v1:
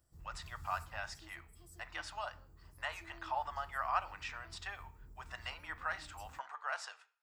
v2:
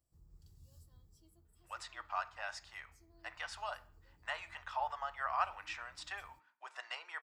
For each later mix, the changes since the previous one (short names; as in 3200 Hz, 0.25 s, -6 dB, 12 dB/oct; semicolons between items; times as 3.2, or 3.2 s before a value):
speech: entry +1.45 s; background -9.0 dB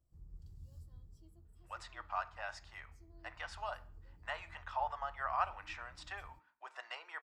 master: add tilt -2 dB/oct